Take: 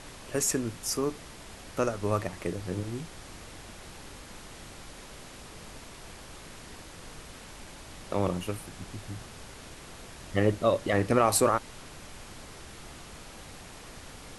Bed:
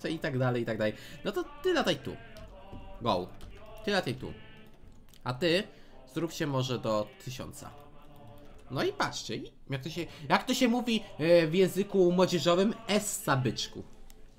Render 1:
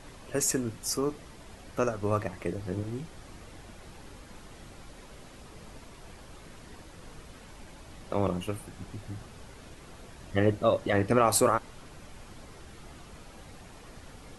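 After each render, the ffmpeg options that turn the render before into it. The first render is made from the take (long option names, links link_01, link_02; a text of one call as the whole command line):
ffmpeg -i in.wav -af "afftdn=noise_reduction=7:noise_floor=-47" out.wav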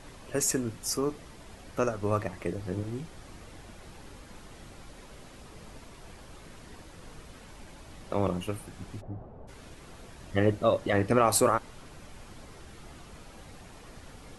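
ffmpeg -i in.wav -filter_complex "[0:a]asplit=3[link_01][link_02][link_03];[link_01]afade=type=out:start_time=9:duration=0.02[link_04];[link_02]lowpass=frequency=700:width_type=q:width=1.7,afade=type=in:start_time=9:duration=0.02,afade=type=out:start_time=9.47:duration=0.02[link_05];[link_03]afade=type=in:start_time=9.47:duration=0.02[link_06];[link_04][link_05][link_06]amix=inputs=3:normalize=0" out.wav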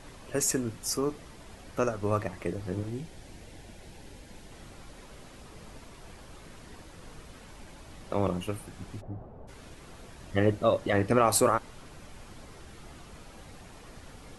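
ffmpeg -i in.wav -filter_complex "[0:a]asettb=1/sr,asplit=3[link_01][link_02][link_03];[link_01]atrim=end=2.894[link_04];[link_02]atrim=start=2.89:end=4.52,asetpts=PTS-STARTPTS,afade=type=in:duration=0.004:curve=qsin,afade=type=out:start_time=1.626:duration=0.004:curve=qsin,equalizer=frequency=1200:width=3.4:gain=-11[link_05];[link_03]atrim=start=4.516[link_06];[link_04][link_05]acrossfade=duration=0.004:curve1=hsin:curve2=qsin[link_07];[link_07][link_06]acrossfade=duration=0.004:curve1=qsin:curve2=hsin" out.wav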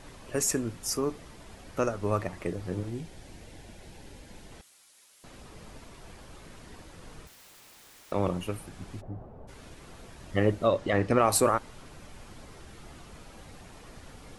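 ffmpeg -i in.wav -filter_complex "[0:a]asettb=1/sr,asplit=3[link_01][link_02][link_03];[link_01]atrim=end=4.614[link_04];[link_02]atrim=start=4.61:end=5.24,asetpts=PTS-STARTPTS,afade=type=in:duration=0.004:curve=qsin,afade=type=out:start_time=0.626:duration=0.004:curve=qsin,aderivative[link_05];[link_03]atrim=start=5.236[link_06];[link_04][link_05]acrossfade=duration=0.004:curve1=hsin:curve2=qsin[link_07];[link_07][link_06]acrossfade=duration=0.004:curve1=qsin:curve2=hsin,asettb=1/sr,asplit=3[link_08][link_09][link_10];[link_08]atrim=end=7.274[link_11];[link_09]atrim=start=7.27:end=8.12,asetpts=PTS-STARTPTS,afade=type=in:duration=0.004:curve=qsin,afade=type=out:start_time=0.846:duration=0.004:curve=qsin,aeval=exprs='(mod(299*val(0)+1,2)-1)/299':channel_layout=same[link_12];[link_10]atrim=start=8.116[link_13];[link_11][link_12]acrossfade=duration=0.004:curve1=hsin:curve2=qsin[link_14];[link_14][link_13]acrossfade=duration=0.004:curve1=qsin:curve2=hsin,asettb=1/sr,asplit=3[link_15][link_16][link_17];[link_15]atrim=end=10.674[link_18];[link_16]atrim=start=10.67:end=11.19,asetpts=PTS-STARTPTS,afade=type=in:duration=0.004:curve=qsin,afade=type=out:start_time=0.516:duration=0.004:curve=qsin,lowpass=7700[link_19];[link_17]atrim=start=11.186[link_20];[link_18][link_19]acrossfade=duration=0.004:curve1=hsin:curve2=qsin[link_21];[link_21][link_20]acrossfade=duration=0.004:curve1=qsin:curve2=hsin" out.wav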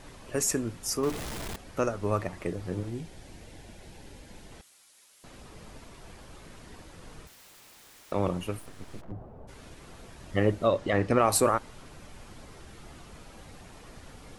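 ffmpeg -i in.wav -filter_complex "[0:a]asettb=1/sr,asplit=3[link_01][link_02][link_03];[link_01]atrim=end=1.034[link_04];[link_02]atrim=start=1.03:end=1.56,asetpts=PTS-STARTPTS,afade=type=in:duration=0.004:curve=qsin,afade=type=out:start_time=0.526:duration=0.004:curve=qsin,aeval=exprs='val(0)+0.5*0.0237*sgn(val(0))':channel_layout=same[link_05];[link_03]atrim=start=1.556[link_06];[link_04][link_05]acrossfade=duration=0.004:curve1=hsin:curve2=qsin[link_07];[link_07][link_06]acrossfade=duration=0.004:curve1=qsin:curve2=hsin,asettb=1/sr,asplit=3[link_08][link_09][link_10];[link_08]atrim=end=8.594[link_11];[link_09]atrim=start=8.59:end=9.12,asetpts=PTS-STARTPTS,afade=type=in:duration=0.004:curve=qsin,afade=type=out:start_time=0.526:duration=0.004:curve=qsin,aeval=exprs='abs(val(0))':channel_layout=same[link_12];[link_10]atrim=start=9.116[link_13];[link_11][link_12]acrossfade=duration=0.004:curve1=hsin:curve2=qsin[link_14];[link_14][link_13]acrossfade=duration=0.004:curve1=qsin:curve2=hsin" out.wav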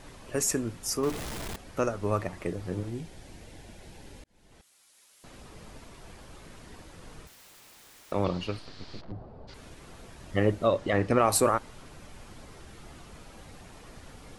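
ffmpeg -i in.wav -filter_complex "[0:a]asettb=1/sr,asplit=3[link_01][link_02][link_03];[link_01]atrim=end=8.244[link_04];[link_02]atrim=start=8.24:end=9.54,asetpts=PTS-STARTPTS,afade=type=in:duration=0.004:curve=qsin,afade=type=out:start_time=1.296:duration=0.004:curve=qsin,lowpass=frequency=4500:width_type=q:width=4.9[link_05];[link_03]atrim=start=9.536[link_06];[link_04][link_05]acrossfade=duration=0.004:curve1=hsin:curve2=qsin[link_07];[link_07][link_06]acrossfade=duration=0.004:curve1=qsin:curve2=hsin,asplit=2[link_08][link_09];[link_08]atrim=end=4.24,asetpts=PTS-STARTPTS,afade=type=out:start_time=4.236:duration=0.004:curve=hsin[link_10];[link_09]atrim=start=4.24,asetpts=PTS-STARTPTS,afade=type=in:duration=1.17:curve=qsin[link_11];[link_10][link_11]concat=n=2:v=0:a=1" out.wav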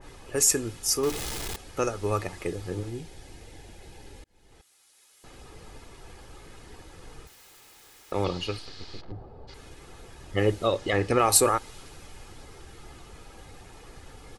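ffmpeg -i in.wav -af "aecho=1:1:2.4:0.4,adynamicequalizer=threshold=0.00562:dfrequency=2400:dqfactor=0.7:tfrequency=2400:tqfactor=0.7:attack=5:release=100:ratio=0.375:range=3.5:mode=boostabove:tftype=highshelf" out.wav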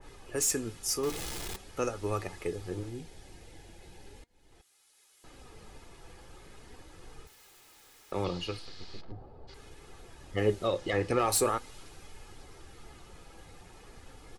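ffmpeg -i in.wav -filter_complex "[0:a]flanger=delay=2.3:depth=3.7:regen=79:speed=0.41:shape=sinusoidal,acrossover=split=520[link_01][link_02];[link_02]asoftclip=type=tanh:threshold=-22dB[link_03];[link_01][link_03]amix=inputs=2:normalize=0" out.wav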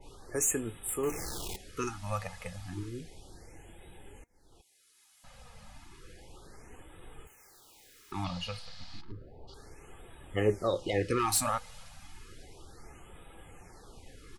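ffmpeg -i in.wav -af "afftfilt=real='re*(1-between(b*sr/1024,320*pow(5500/320,0.5+0.5*sin(2*PI*0.32*pts/sr))/1.41,320*pow(5500/320,0.5+0.5*sin(2*PI*0.32*pts/sr))*1.41))':imag='im*(1-between(b*sr/1024,320*pow(5500/320,0.5+0.5*sin(2*PI*0.32*pts/sr))/1.41,320*pow(5500/320,0.5+0.5*sin(2*PI*0.32*pts/sr))*1.41))':win_size=1024:overlap=0.75" out.wav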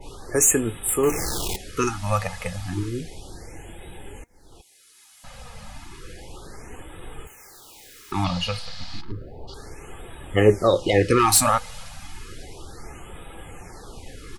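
ffmpeg -i in.wav -af "volume=11.5dB" out.wav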